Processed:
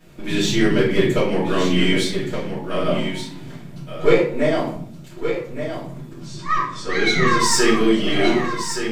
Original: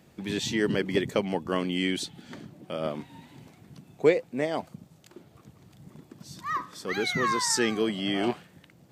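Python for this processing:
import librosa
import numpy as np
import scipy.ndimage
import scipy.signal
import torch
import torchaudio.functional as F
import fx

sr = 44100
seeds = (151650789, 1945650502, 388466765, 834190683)

y = np.where(x < 0.0, 10.0 ** (-3.0 / 20.0) * x, x)
y = fx.lowpass(y, sr, hz=8400.0, slope=24, at=(6.19, 7.39))
y = 10.0 ** (-16.5 / 20.0) * np.tanh(y / 10.0 ** (-16.5 / 20.0))
y = y + 10.0 ** (-8.5 / 20.0) * np.pad(y, (int(1171 * sr / 1000.0), 0))[:len(y)]
y = fx.room_shoebox(y, sr, seeds[0], volume_m3=67.0, walls='mixed', distance_m=2.7)
y = y * 10.0 ** (-1.0 / 20.0)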